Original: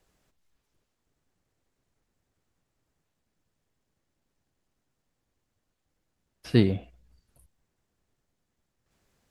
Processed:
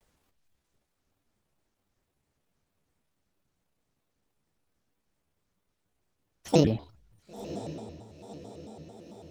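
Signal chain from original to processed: pitch shift switched off and on +9 st, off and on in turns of 158 ms; echo that smears into a reverb 1008 ms, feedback 55%, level -13 dB; vibrato with a chosen wave square 4.5 Hz, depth 250 cents

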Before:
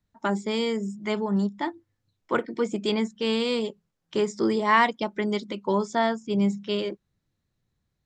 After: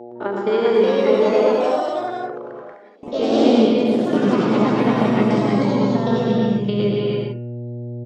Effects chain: spectrogram pixelated in time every 50 ms; low-pass 5.1 kHz 24 dB/octave; treble shelf 2.7 kHz -9 dB; de-hum 130.1 Hz, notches 23; compressor with a negative ratio -28 dBFS, ratio -0.5; mains buzz 120 Hz, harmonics 7, -42 dBFS -4 dB/octave; high-pass sweep 360 Hz -> 120 Hz, 2.86–5.04 s; 1.31–3.08 s: inverted gate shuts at -26 dBFS, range -34 dB; delay 116 ms -3.5 dB; reverberation, pre-delay 3 ms, DRR 0 dB; ever faster or slower copies 443 ms, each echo +3 st, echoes 3; trim +4.5 dB

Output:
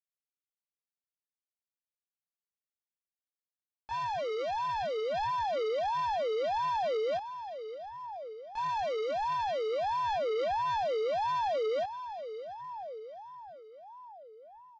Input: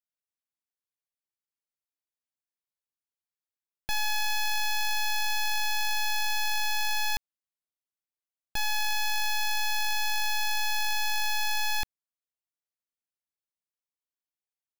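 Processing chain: Gaussian low-pass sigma 1.9 samples; echo that smears into a reverb 781 ms, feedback 41%, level -15.5 dB; chorus voices 6, 0.8 Hz, delay 21 ms, depth 2.2 ms; on a send: feedback delay 571 ms, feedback 43%, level -19 dB; on the sum: ring modulator with a swept carrier 720 Hz, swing 40%, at 1.5 Hz; trim -7 dB

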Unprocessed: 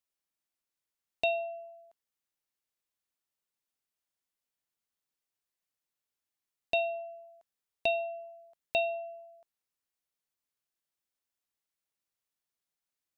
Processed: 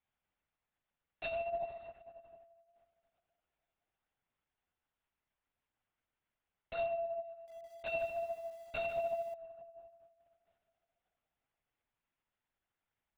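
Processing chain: high-pass 550 Hz 12 dB/octave; dynamic bell 760 Hz, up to -3 dB, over -47 dBFS, Q 5.4; compression 6:1, threshold -34 dBFS, peak gain reduction 8.5 dB; saturation -33.5 dBFS, distortion -12 dB; chorus voices 2, 1.1 Hz, delay 11 ms, depth 3.3 ms; crackle 370 per s -78 dBFS; distance through air 330 m; plate-style reverb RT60 2.5 s, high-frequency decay 0.6×, DRR 5 dB; LPC vocoder at 8 kHz whisper; 7.33–9.34 s: bit-crushed delay 147 ms, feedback 35%, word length 11-bit, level -9 dB; trim +7.5 dB

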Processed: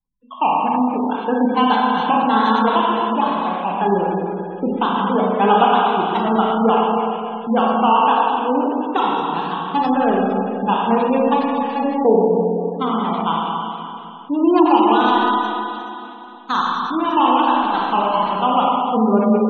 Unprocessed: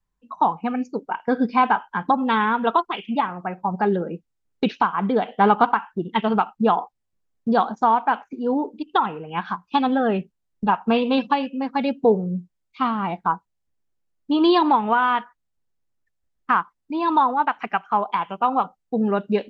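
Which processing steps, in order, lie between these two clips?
median filter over 25 samples; 16.57–19.15 s: bass shelf 360 Hz +4.5 dB; Schroeder reverb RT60 2.9 s, combs from 28 ms, DRR -4.5 dB; spectral gate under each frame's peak -30 dB strong; bass shelf 130 Hz -12 dB; trim +1.5 dB

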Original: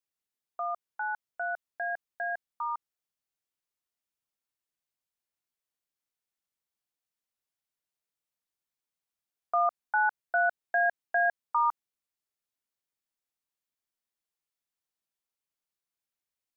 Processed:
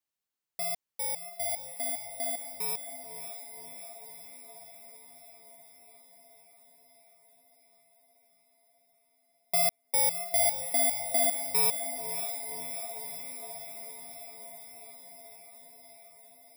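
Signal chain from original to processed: bit-reversed sample order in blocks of 32 samples; echo that smears into a reverb 558 ms, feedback 72%, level -9 dB

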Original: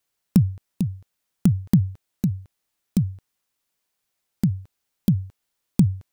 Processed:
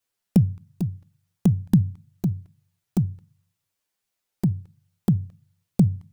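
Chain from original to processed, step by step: touch-sensitive flanger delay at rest 10.1 ms, full sweep at -16.5 dBFS; on a send: reverberation RT60 0.35 s, pre-delay 3 ms, DRR 22.5 dB

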